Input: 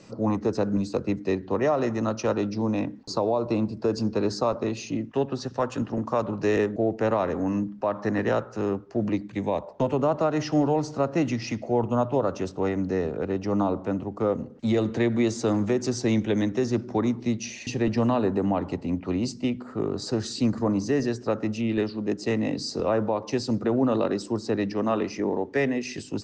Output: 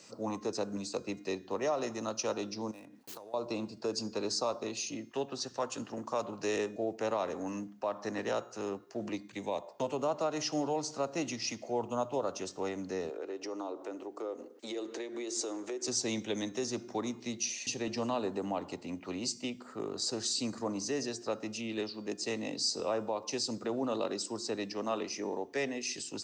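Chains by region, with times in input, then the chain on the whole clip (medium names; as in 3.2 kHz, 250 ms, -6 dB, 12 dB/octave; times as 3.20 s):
2.71–3.34 s: median filter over 9 samples + compression 12:1, threshold -36 dBFS
13.10–15.88 s: resonant low shelf 230 Hz -13.5 dB, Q 3 + compression 2.5:1, threshold -29 dBFS
whole clip: RIAA curve recording; de-hum 353.2 Hz, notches 32; dynamic bell 1.7 kHz, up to -6 dB, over -44 dBFS, Q 1.6; trim -6 dB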